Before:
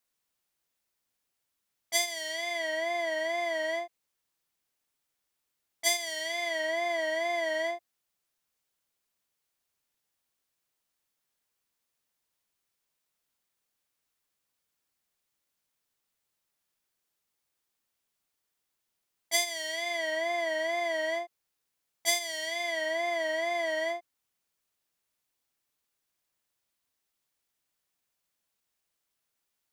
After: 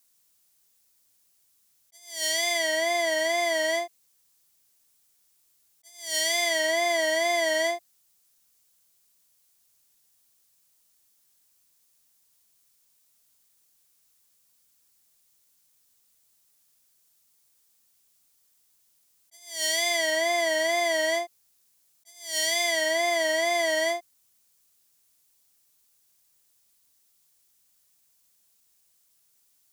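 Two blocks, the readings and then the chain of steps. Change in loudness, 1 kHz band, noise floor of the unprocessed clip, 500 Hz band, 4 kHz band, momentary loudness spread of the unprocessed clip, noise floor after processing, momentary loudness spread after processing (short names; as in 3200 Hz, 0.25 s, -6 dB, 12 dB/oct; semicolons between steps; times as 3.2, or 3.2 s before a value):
+5.5 dB, +4.5 dB, -83 dBFS, +5.0 dB, +6.5 dB, 5 LU, -67 dBFS, 8 LU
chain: tone controls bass +4 dB, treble +12 dB; attack slew limiter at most 120 dB/s; gain +5 dB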